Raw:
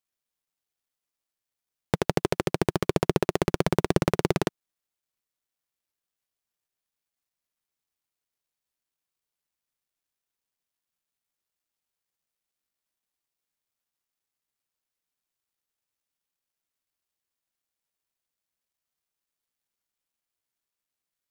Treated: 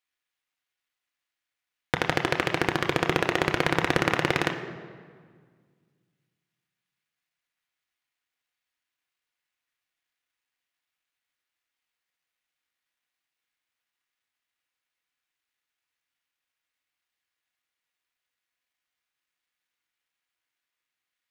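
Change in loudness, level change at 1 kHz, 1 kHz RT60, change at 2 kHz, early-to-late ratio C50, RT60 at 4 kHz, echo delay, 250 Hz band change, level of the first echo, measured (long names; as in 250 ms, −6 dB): +1.0 dB, +3.5 dB, 1.8 s, +9.0 dB, 9.5 dB, 1.2 s, no echo audible, −2.0 dB, no echo audible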